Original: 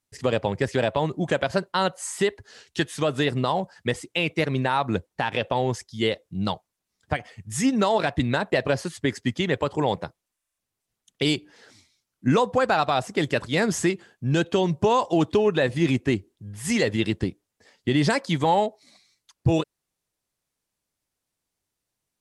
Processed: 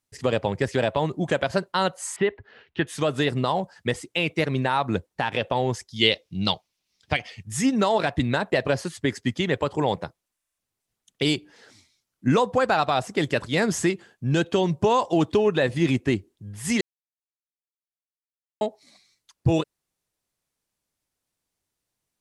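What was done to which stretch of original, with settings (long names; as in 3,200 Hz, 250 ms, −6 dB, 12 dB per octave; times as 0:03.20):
0:02.16–0:02.87: low-pass filter 2,900 Hz 24 dB per octave
0:05.96–0:07.43: flat-topped bell 3,600 Hz +10 dB
0:16.81–0:18.61: silence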